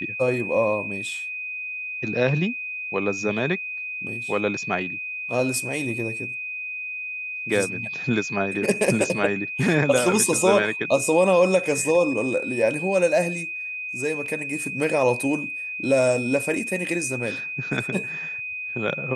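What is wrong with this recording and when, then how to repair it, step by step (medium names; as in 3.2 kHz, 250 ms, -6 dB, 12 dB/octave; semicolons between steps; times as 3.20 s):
whine 2.5 kHz -29 dBFS
14.26 s: dropout 2.9 ms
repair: band-stop 2.5 kHz, Q 30; interpolate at 14.26 s, 2.9 ms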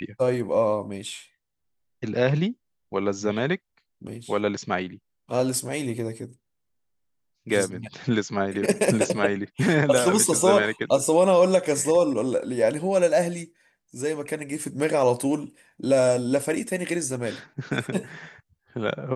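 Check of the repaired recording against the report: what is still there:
nothing left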